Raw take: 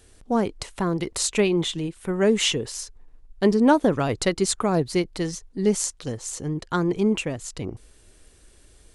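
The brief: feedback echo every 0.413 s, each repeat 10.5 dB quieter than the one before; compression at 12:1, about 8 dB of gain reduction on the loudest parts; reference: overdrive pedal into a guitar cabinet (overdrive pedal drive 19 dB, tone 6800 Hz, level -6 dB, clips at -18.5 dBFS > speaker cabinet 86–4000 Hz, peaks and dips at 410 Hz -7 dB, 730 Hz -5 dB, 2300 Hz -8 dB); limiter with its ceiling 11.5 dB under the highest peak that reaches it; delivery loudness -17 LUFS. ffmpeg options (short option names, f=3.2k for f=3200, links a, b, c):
-filter_complex "[0:a]acompressor=threshold=-21dB:ratio=12,alimiter=limit=-21dB:level=0:latency=1,aecho=1:1:413|826|1239:0.299|0.0896|0.0269,asplit=2[a][b];[b]highpass=f=720:p=1,volume=19dB,asoftclip=type=tanh:threshold=-18.5dB[c];[a][c]amix=inputs=2:normalize=0,lowpass=f=6.8k:p=1,volume=-6dB,highpass=86,equalizer=f=410:t=q:w=4:g=-7,equalizer=f=730:t=q:w=4:g=-5,equalizer=f=2.3k:t=q:w=4:g=-8,lowpass=f=4k:w=0.5412,lowpass=f=4k:w=1.3066,volume=13.5dB"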